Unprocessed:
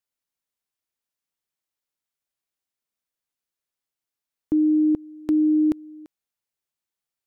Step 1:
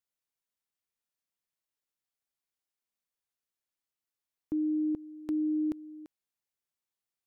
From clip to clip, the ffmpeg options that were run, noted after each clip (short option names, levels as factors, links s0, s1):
-af "alimiter=limit=0.0841:level=0:latency=1:release=18,volume=0.596"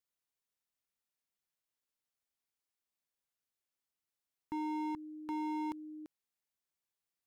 -af "aeval=exprs='0.0299*(abs(mod(val(0)/0.0299+3,4)-2)-1)':c=same,volume=0.841"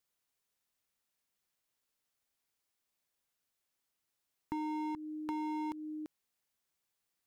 -af "acompressor=threshold=0.00708:ratio=3,volume=2"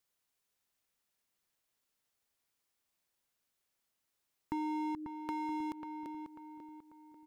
-filter_complex "[0:a]asplit=2[s0][s1];[s1]adelay=542,lowpass=f=2100:p=1,volume=0.473,asplit=2[s2][s3];[s3]adelay=542,lowpass=f=2100:p=1,volume=0.45,asplit=2[s4][s5];[s5]adelay=542,lowpass=f=2100:p=1,volume=0.45,asplit=2[s6][s7];[s7]adelay=542,lowpass=f=2100:p=1,volume=0.45,asplit=2[s8][s9];[s9]adelay=542,lowpass=f=2100:p=1,volume=0.45[s10];[s0][s2][s4][s6][s8][s10]amix=inputs=6:normalize=0,volume=1.12"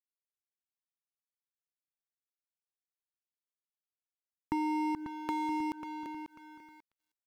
-af "aeval=exprs='sgn(val(0))*max(abs(val(0))-0.00237,0)':c=same,volume=1.88"